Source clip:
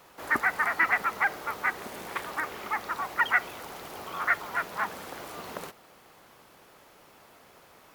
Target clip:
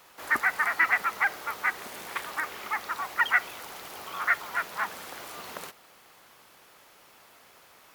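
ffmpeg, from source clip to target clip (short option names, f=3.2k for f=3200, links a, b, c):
-af "tiltshelf=f=930:g=-4.5,volume=-1.5dB"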